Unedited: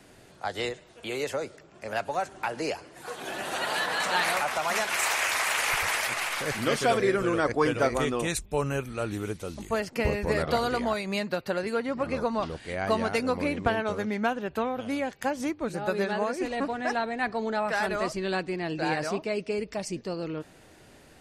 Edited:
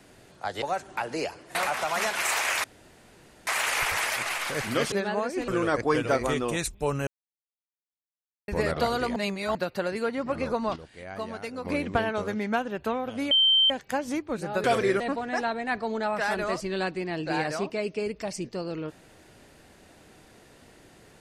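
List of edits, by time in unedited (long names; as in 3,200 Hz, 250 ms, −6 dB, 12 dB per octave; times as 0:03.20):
0:00.62–0:02.08: remove
0:03.01–0:04.29: remove
0:05.38: splice in room tone 0.83 s
0:06.83–0:07.19: swap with 0:15.96–0:16.52
0:08.78–0:10.19: silence
0:10.87–0:11.26: reverse
0:12.47–0:13.36: clip gain −9 dB
0:15.02: insert tone 3,120 Hz −17 dBFS 0.39 s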